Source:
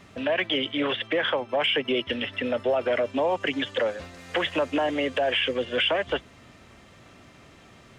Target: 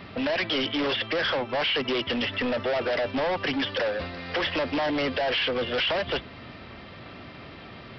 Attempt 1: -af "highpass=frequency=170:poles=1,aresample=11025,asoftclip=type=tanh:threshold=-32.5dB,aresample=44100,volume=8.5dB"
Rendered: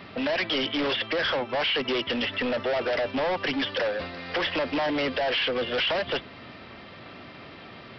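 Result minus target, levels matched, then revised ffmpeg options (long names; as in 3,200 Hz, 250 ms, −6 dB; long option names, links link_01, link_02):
125 Hz band −3.0 dB
-af "highpass=frequency=43:poles=1,aresample=11025,asoftclip=type=tanh:threshold=-32.5dB,aresample=44100,volume=8.5dB"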